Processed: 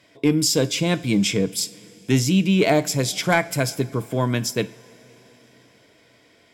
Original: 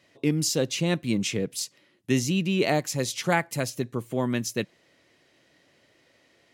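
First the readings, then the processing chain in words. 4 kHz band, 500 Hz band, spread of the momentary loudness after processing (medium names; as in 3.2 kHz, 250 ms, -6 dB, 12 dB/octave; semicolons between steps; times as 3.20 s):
+6.5 dB, +5.0 dB, 9 LU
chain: rippled EQ curve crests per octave 1.7, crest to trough 7 dB; in parallel at -9 dB: sine folder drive 4 dB, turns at -9 dBFS; on the sum: two-slope reverb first 0.43 s, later 4.9 s, from -18 dB, DRR 13.5 dB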